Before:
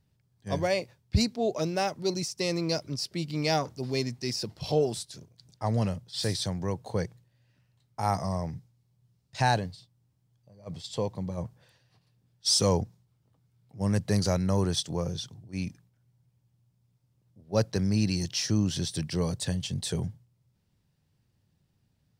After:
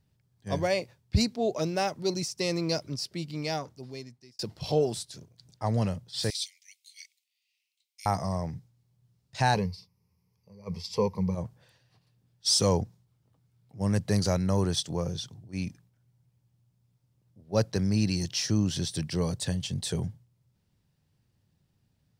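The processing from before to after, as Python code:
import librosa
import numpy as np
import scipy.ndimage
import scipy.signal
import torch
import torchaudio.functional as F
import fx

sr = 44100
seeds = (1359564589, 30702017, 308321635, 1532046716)

y = fx.steep_highpass(x, sr, hz=2100.0, slope=96, at=(6.3, 8.06))
y = fx.ripple_eq(y, sr, per_octave=0.84, db=14, at=(9.54, 11.35))
y = fx.edit(y, sr, fx.fade_out_span(start_s=2.78, length_s=1.61), tone=tone)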